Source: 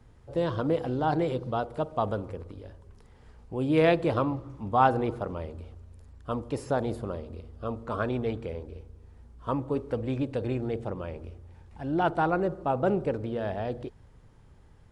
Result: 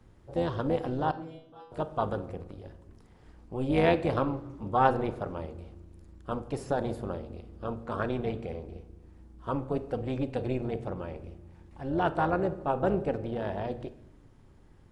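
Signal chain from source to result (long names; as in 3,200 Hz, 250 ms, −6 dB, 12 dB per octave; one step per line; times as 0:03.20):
amplitude modulation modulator 260 Hz, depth 50%
0:01.11–0:01.72: stiff-string resonator 160 Hz, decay 0.76 s, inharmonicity 0.002
on a send: convolution reverb RT60 0.80 s, pre-delay 5 ms, DRR 12 dB
on the sum: level +1 dB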